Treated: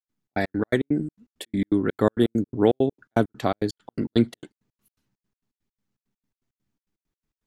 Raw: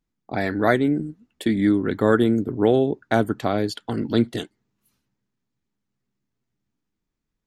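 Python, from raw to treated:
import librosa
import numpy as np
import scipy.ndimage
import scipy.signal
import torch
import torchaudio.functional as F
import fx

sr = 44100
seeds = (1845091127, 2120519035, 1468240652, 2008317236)

y = fx.step_gate(x, sr, bpm=166, pattern='.xx.x.x.x', floor_db=-60.0, edge_ms=4.5)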